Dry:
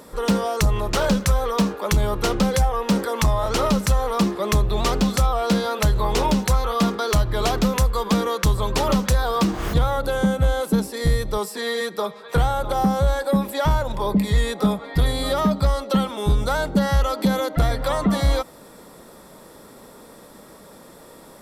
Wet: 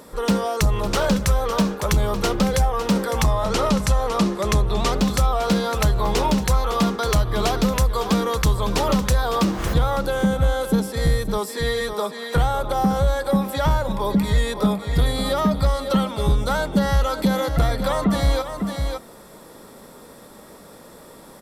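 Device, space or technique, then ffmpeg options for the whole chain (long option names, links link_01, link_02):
ducked delay: -filter_complex "[0:a]asplit=3[link_01][link_02][link_03];[link_02]adelay=556,volume=-6dB[link_04];[link_03]apad=whole_len=969040[link_05];[link_04][link_05]sidechaincompress=threshold=-24dB:ratio=8:attack=16:release=302[link_06];[link_01][link_06]amix=inputs=2:normalize=0,asettb=1/sr,asplit=3[link_07][link_08][link_09];[link_07]atrim=end=3.284[link_10];[link_08]atrim=start=3.28:end=4.99,asetpts=PTS-STARTPTS,afade=type=in:duration=0.004:curve=qsin,afade=type=out:start_time=1.706:duration=0.004:curve=qsin,lowpass=12000[link_11];[link_09]atrim=start=4.986[link_12];[link_10][link_11]acrossfade=duration=0.004:curve1=hsin:curve2=qsin[link_13];[link_13][link_12]acrossfade=duration=0.004:curve1=qsin:curve2=hsin"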